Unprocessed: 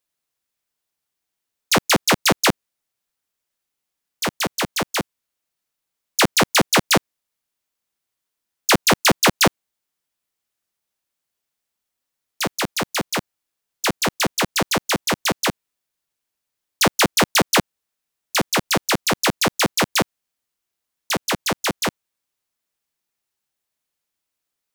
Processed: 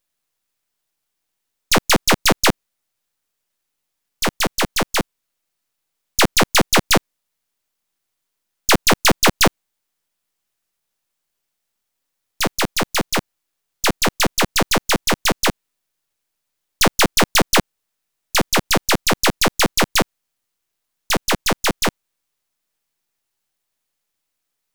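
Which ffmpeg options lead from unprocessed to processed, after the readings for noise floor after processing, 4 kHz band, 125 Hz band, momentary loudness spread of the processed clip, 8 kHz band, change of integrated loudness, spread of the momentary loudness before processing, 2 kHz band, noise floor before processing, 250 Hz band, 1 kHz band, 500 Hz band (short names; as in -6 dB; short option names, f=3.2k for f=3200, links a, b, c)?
-78 dBFS, +2.0 dB, +2.0 dB, 8 LU, +2.0 dB, +2.0 dB, 10 LU, +1.5 dB, -82 dBFS, +1.5 dB, +1.5 dB, +1.5 dB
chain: -filter_complex "[0:a]aeval=exprs='if(lt(val(0),0),0.251*val(0),val(0))':c=same,asplit=2[a][b];[b]alimiter=limit=-14.5dB:level=0:latency=1:release=27,volume=-2.5dB[c];[a][c]amix=inputs=2:normalize=0,volume=2dB"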